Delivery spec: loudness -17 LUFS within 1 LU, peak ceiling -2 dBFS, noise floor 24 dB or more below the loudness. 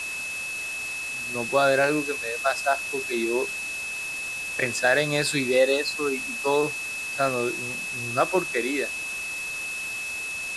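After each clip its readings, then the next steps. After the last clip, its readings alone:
steady tone 2.6 kHz; tone level -30 dBFS; noise floor -32 dBFS; noise floor target -50 dBFS; loudness -25.5 LUFS; peak level -8.5 dBFS; loudness target -17.0 LUFS
-> band-stop 2.6 kHz, Q 30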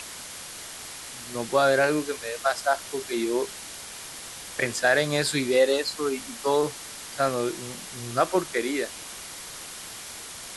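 steady tone not found; noise floor -40 dBFS; noise floor target -51 dBFS
-> noise reduction 11 dB, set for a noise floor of -40 dBFS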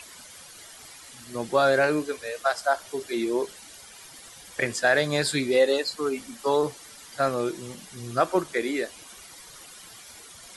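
noise floor -47 dBFS; noise floor target -50 dBFS
-> noise reduction 6 dB, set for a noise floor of -47 dBFS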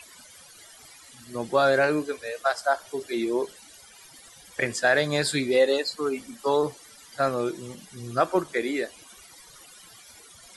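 noise floor -50 dBFS; loudness -26.0 LUFS; peak level -9.5 dBFS; loudness target -17.0 LUFS
-> trim +9 dB; peak limiter -2 dBFS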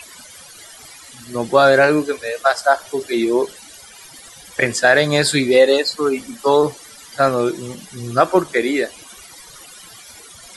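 loudness -17.0 LUFS; peak level -2.0 dBFS; noise floor -41 dBFS

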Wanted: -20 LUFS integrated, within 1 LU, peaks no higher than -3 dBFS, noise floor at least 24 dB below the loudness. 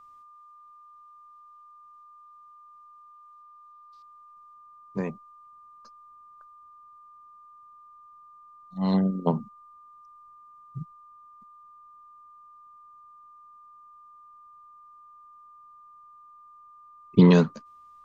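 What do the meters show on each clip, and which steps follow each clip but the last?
steady tone 1.2 kHz; tone level -49 dBFS; loudness -24.0 LUFS; peak level -4.5 dBFS; loudness target -20.0 LUFS
-> band-stop 1.2 kHz, Q 30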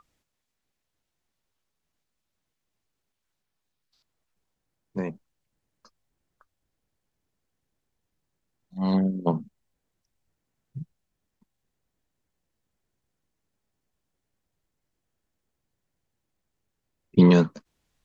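steady tone not found; loudness -23.5 LUFS; peak level -4.0 dBFS; loudness target -20.0 LUFS
-> trim +3.5 dB; peak limiter -3 dBFS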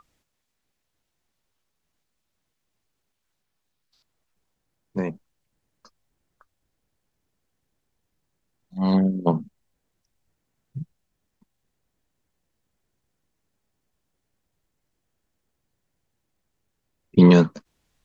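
loudness -20.0 LUFS; peak level -3.0 dBFS; noise floor -78 dBFS

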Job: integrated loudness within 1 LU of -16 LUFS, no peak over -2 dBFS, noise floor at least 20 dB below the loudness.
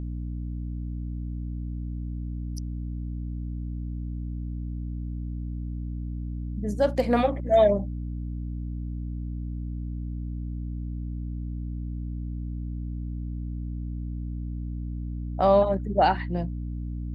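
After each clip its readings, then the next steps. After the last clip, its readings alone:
hum 60 Hz; highest harmonic 300 Hz; hum level -30 dBFS; loudness -30.0 LUFS; peak level -9.0 dBFS; loudness target -16.0 LUFS
-> de-hum 60 Hz, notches 5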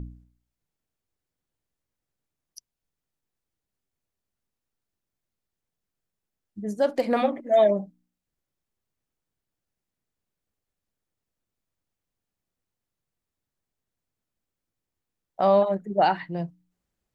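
hum not found; loudness -23.5 LUFS; peak level -10.0 dBFS; loudness target -16.0 LUFS
-> trim +7.5 dB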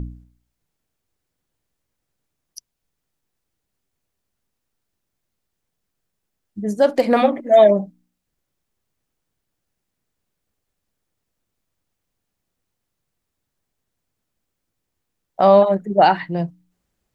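loudness -16.0 LUFS; peak level -2.5 dBFS; noise floor -79 dBFS

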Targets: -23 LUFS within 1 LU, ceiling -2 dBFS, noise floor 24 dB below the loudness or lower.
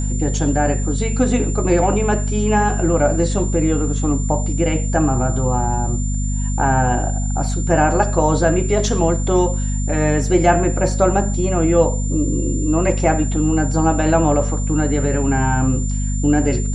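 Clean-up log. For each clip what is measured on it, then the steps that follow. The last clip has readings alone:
hum 50 Hz; highest harmonic 250 Hz; hum level -18 dBFS; steady tone 7.2 kHz; tone level -30 dBFS; loudness -18.0 LUFS; peak level -1.5 dBFS; loudness target -23.0 LUFS
-> hum notches 50/100/150/200/250 Hz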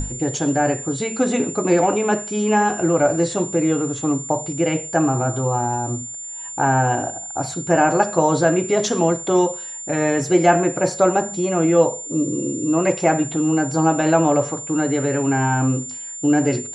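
hum not found; steady tone 7.2 kHz; tone level -30 dBFS
-> band-stop 7.2 kHz, Q 30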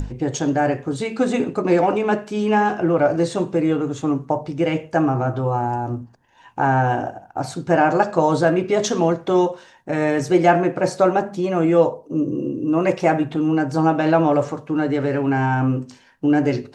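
steady tone not found; loudness -20.0 LUFS; peak level -3.0 dBFS; loudness target -23.0 LUFS
-> trim -3 dB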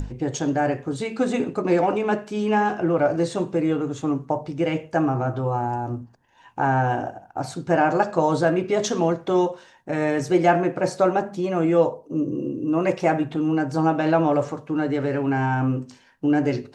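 loudness -23.0 LUFS; peak level -6.0 dBFS; noise floor -53 dBFS

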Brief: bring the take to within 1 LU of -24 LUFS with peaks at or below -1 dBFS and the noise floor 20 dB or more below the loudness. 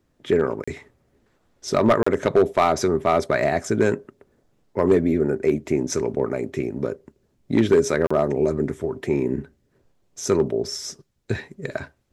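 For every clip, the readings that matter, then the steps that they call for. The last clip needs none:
clipped samples 0.6%; clipping level -9.5 dBFS; dropouts 3; longest dropout 35 ms; loudness -22.5 LUFS; peak level -9.5 dBFS; loudness target -24.0 LUFS
-> clip repair -9.5 dBFS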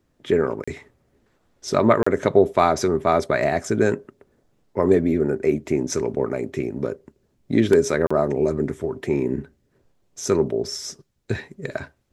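clipped samples 0.0%; dropouts 3; longest dropout 35 ms
-> interpolate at 0.64/2.03/8.07 s, 35 ms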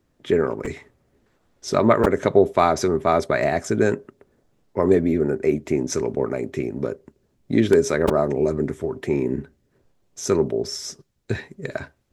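dropouts 0; loudness -22.0 LUFS; peak level -2.0 dBFS; loudness target -24.0 LUFS
-> trim -2 dB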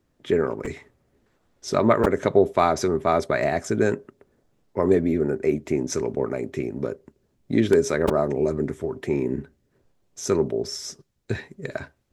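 loudness -24.0 LUFS; peak level -4.0 dBFS; noise floor -69 dBFS

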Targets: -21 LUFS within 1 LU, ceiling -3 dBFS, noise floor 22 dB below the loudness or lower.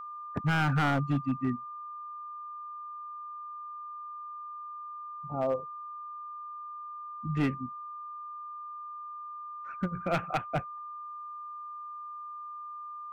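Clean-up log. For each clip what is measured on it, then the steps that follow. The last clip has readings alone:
clipped samples 0.8%; clipping level -22.0 dBFS; steady tone 1.2 kHz; tone level -39 dBFS; loudness -35.5 LUFS; peak level -22.0 dBFS; loudness target -21.0 LUFS
-> clip repair -22 dBFS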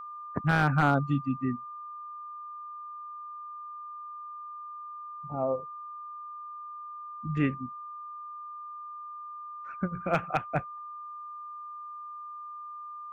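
clipped samples 0.0%; steady tone 1.2 kHz; tone level -39 dBFS
-> band-stop 1.2 kHz, Q 30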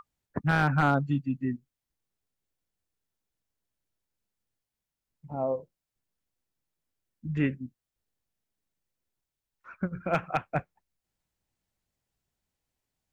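steady tone not found; loudness -29.5 LUFS; peak level -12.5 dBFS; loudness target -21.0 LUFS
-> trim +8.5 dB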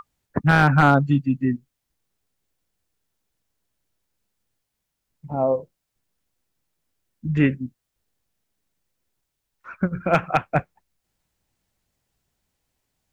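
loudness -21.0 LUFS; peak level -4.0 dBFS; noise floor -80 dBFS

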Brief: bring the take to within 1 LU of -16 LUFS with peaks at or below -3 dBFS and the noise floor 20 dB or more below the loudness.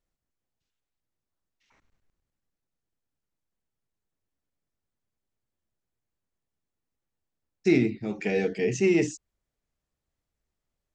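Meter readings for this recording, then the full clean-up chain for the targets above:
loudness -26.0 LUFS; peak level -10.0 dBFS; loudness target -16.0 LUFS
-> trim +10 dB; peak limiter -3 dBFS

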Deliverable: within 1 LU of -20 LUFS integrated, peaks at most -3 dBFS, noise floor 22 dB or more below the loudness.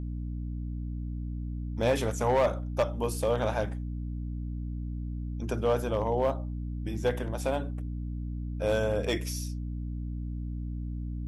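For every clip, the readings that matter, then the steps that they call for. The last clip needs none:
clipped samples 0.5%; clipping level -19.0 dBFS; hum 60 Hz; highest harmonic 300 Hz; hum level -32 dBFS; loudness -32.0 LUFS; peak level -19.0 dBFS; loudness target -20.0 LUFS
-> clip repair -19 dBFS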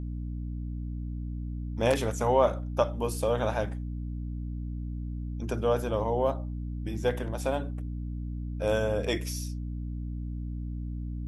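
clipped samples 0.0%; hum 60 Hz; highest harmonic 300 Hz; hum level -32 dBFS
-> de-hum 60 Hz, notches 5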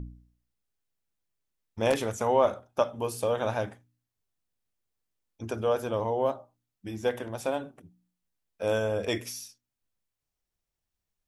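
hum not found; loudness -29.5 LUFS; peak level -11.0 dBFS; loudness target -20.0 LUFS
-> trim +9.5 dB; peak limiter -3 dBFS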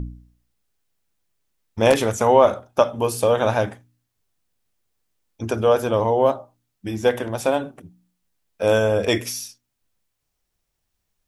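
loudness -20.5 LUFS; peak level -3.0 dBFS; noise floor -77 dBFS

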